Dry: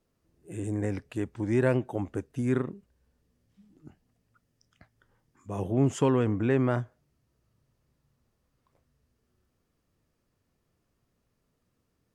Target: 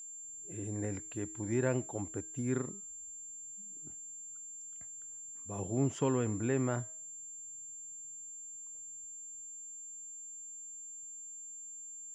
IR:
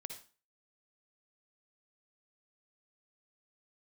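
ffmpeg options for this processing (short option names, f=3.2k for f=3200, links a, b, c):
-filter_complex "[0:a]bandreject=f=317.7:t=h:w=4,bandreject=f=635.4:t=h:w=4,bandreject=f=953.1:t=h:w=4,bandreject=f=1.2708k:t=h:w=4,bandreject=f=1.5885k:t=h:w=4,bandreject=f=1.9062k:t=h:w=4,bandreject=f=2.2239k:t=h:w=4,bandreject=f=2.5416k:t=h:w=4,bandreject=f=2.8593k:t=h:w=4,bandreject=f=3.177k:t=h:w=4,bandreject=f=3.4947k:t=h:w=4,bandreject=f=3.8124k:t=h:w=4,bandreject=f=4.1301k:t=h:w=4,bandreject=f=4.4478k:t=h:w=4,bandreject=f=4.7655k:t=h:w=4,bandreject=f=5.0832k:t=h:w=4,bandreject=f=5.4009k:t=h:w=4,bandreject=f=5.7186k:t=h:w=4,bandreject=f=6.0363k:t=h:w=4,bandreject=f=6.354k:t=h:w=4,bandreject=f=6.6717k:t=h:w=4,bandreject=f=6.9894k:t=h:w=4,aeval=exprs='val(0)+0.0158*sin(2*PI*7300*n/s)':c=same,acrossover=split=7100[a][b];[b]acompressor=threshold=-46dB:ratio=4:attack=1:release=60[c];[a][c]amix=inputs=2:normalize=0,volume=-7dB"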